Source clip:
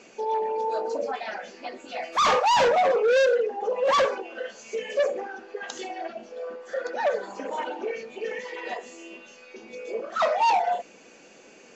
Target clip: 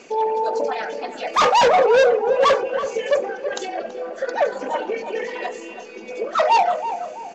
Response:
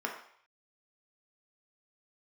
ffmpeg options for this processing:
-filter_complex "[0:a]atempo=1.6,asplit=2[link_01][link_02];[link_02]adelay=330,lowpass=frequency=830:poles=1,volume=-7dB,asplit=2[link_03][link_04];[link_04]adelay=330,lowpass=frequency=830:poles=1,volume=0.54,asplit=2[link_05][link_06];[link_06]adelay=330,lowpass=frequency=830:poles=1,volume=0.54,asplit=2[link_07][link_08];[link_08]adelay=330,lowpass=frequency=830:poles=1,volume=0.54,asplit=2[link_09][link_10];[link_10]adelay=330,lowpass=frequency=830:poles=1,volume=0.54,asplit=2[link_11][link_12];[link_12]adelay=330,lowpass=frequency=830:poles=1,volume=0.54,asplit=2[link_13][link_14];[link_14]adelay=330,lowpass=frequency=830:poles=1,volume=0.54[link_15];[link_01][link_03][link_05][link_07][link_09][link_11][link_13][link_15]amix=inputs=8:normalize=0,volume=6dB"

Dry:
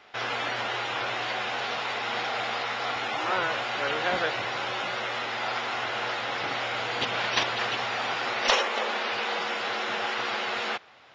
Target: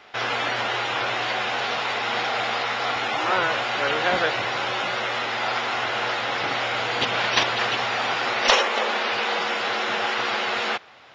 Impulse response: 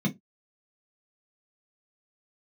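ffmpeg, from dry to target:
-af "volume=5dB"

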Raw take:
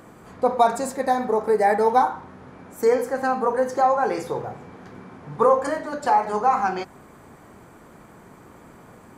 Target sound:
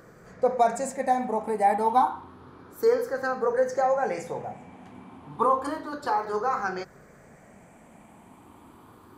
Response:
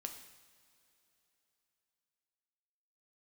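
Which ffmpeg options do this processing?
-af "afftfilt=real='re*pow(10,9/40*sin(2*PI*(0.57*log(max(b,1)*sr/1024/100)/log(2)-(0.3)*(pts-256)/sr)))':imag='im*pow(10,9/40*sin(2*PI*(0.57*log(max(b,1)*sr/1024/100)/log(2)-(0.3)*(pts-256)/sr)))':win_size=1024:overlap=0.75,volume=-5.5dB"

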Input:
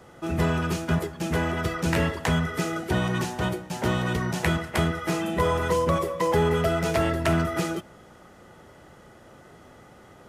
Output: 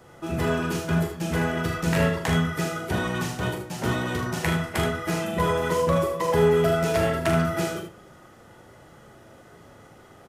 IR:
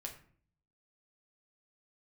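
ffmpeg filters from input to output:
-filter_complex "[0:a]asplit=2[link_01][link_02];[1:a]atrim=start_sample=2205,highshelf=frequency=8700:gain=11[link_03];[link_02][link_03]afir=irnorm=-1:irlink=0,volume=-3.5dB[link_04];[link_01][link_04]amix=inputs=2:normalize=0,flanger=delay=8.2:depth=5.6:regen=-71:speed=0.23:shape=sinusoidal,asplit=2[link_05][link_06];[link_06]aecho=0:1:41|77:0.501|0.422[link_07];[link_05][link_07]amix=inputs=2:normalize=0"

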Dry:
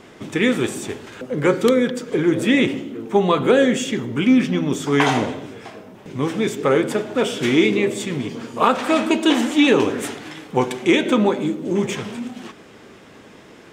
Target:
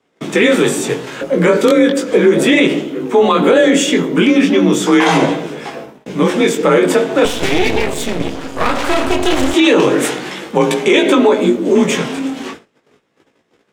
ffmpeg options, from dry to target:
ffmpeg -i in.wav -filter_complex "[0:a]bandreject=frequency=60:width_type=h:width=6,bandreject=frequency=120:width_type=h:width=6,bandreject=frequency=180:width_type=h:width=6,bandreject=frequency=240:width_type=h:width=6,bandreject=frequency=300:width_type=h:width=6,agate=range=-30dB:threshold=-40dB:ratio=16:detection=peak,flanger=delay=16:depth=5.8:speed=0.37,afreqshift=34,asettb=1/sr,asplit=3[link_01][link_02][link_03];[link_01]atrim=end=7.254[link_04];[link_02]atrim=start=7.25:end=9.54,asetpts=PTS-STARTPTS,afade=type=in:duration=0.004:curve=qsin,afade=type=out:start_time=2.286:duration=0.004:curve=qsin,aeval=exprs='max(val(0),0)':channel_layout=same[link_05];[link_03]atrim=start=9.536[link_06];[link_04][link_05]acrossfade=duration=0.004:curve1=hsin:curve2=qsin[link_07];[link_07][link_06]acrossfade=duration=0.004:curve1=qsin:curve2=hsin,alimiter=level_in=14.5dB:limit=-1dB:release=50:level=0:latency=1,volume=-1dB" out.wav

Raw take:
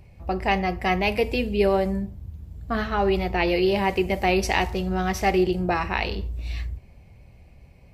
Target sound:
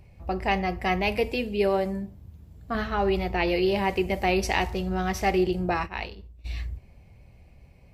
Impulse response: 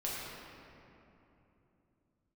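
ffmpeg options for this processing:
-filter_complex "[0:a]asettb=1/sr,asplit=3[link_01][link_02][link_03];[link_01]atrim=end=1.284[link_04];[link_02]atrim=start=1.28:end=2.75,asetpts=PTS-STARTPTS,afade=type=in:duration=0.004:curve=qsin,afade=type=out:start_time=1.466:duration=0.004:curve=qsin,lowshelf=frequency=89:gain=-11[link_05];[link_03]atrim=start=2.746[link_06];[link_04][link_05]acrossfade=duration=0.004:curve1=hsin:curve2=qsin[link_07];[link_07][link_06]acrossfade=duration=0.004:curve1=qsin:curve2=hsin,asplit=3[link_08][link_09][link_10];[link_08]afade=type=out:start_time=5.85:duration=0.02[link_11];[link_09]agate=range=-33dB:threshold=-19dB:ratio=3:detection=peak,afade=type=in:start_time=5.85:duration=0.02,afade=type=out:start_time=6.44:duration=0.02[link_12];[link_10]afade=type=in:start_time=6.44:duration=0.02[link_13];[link_11][link_12][link_13]amix=inputs=3:normalize=0,volume=-2.5dB"

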